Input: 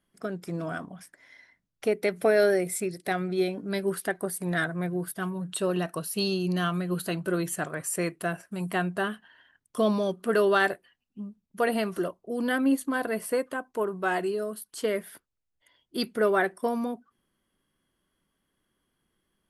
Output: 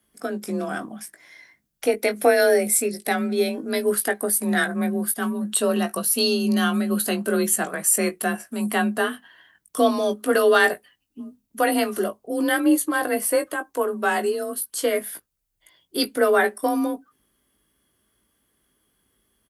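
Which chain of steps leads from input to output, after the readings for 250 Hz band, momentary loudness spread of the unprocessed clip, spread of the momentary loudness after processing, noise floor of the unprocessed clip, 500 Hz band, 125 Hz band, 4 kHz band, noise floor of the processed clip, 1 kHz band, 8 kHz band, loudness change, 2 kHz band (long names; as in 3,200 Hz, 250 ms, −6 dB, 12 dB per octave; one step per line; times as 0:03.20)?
+5.5 dB, 11 LU, 12 LU, −80 dBFS, +5.0 dB, can't be measured, +8.0 dB, −74 dBFS, +6.0 dB, +13.0 dB, +6.5 dB, +6.0 dB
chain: high-shelf EQ 7,100 Hz +12 dB
frequency shifter +32 Hz
double-tracking delay 19 ms −8 dB
level +4.5 dB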